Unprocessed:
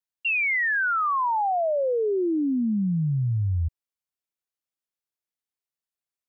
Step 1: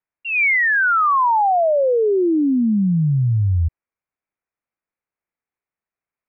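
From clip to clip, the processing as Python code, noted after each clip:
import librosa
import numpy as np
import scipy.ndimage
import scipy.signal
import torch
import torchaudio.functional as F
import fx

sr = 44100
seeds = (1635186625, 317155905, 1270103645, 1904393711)

y = scipy.signal.sosfilt(scipy.signal.ellip(4, 1.0, 40, 2400.0, 'lowpass', fs=sr, output='sos'), x)
y = F.gain(torch.from_numpy(y), 8.0).numpy()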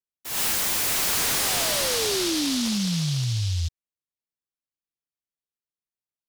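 y = fx.noise_mod_delay(x, sr, seeds[0], noise_hz=4300.0, depth_ms=0.39)
y = F.gain(torch.from_numpy(y), -8.0).numpy()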